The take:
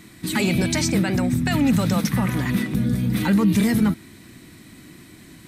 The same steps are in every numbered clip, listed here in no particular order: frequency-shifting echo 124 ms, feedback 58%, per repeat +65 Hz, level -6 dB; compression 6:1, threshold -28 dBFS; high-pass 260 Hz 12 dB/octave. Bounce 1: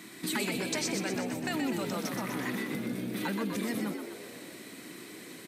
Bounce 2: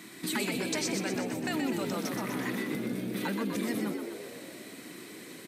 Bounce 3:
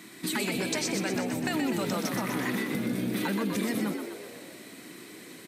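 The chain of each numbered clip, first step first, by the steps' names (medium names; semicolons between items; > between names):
compression > high-pass > frequency-shifting echo; compression > frequency-shifting echo > high-pass; high-pass > compression > frequency-shifting echo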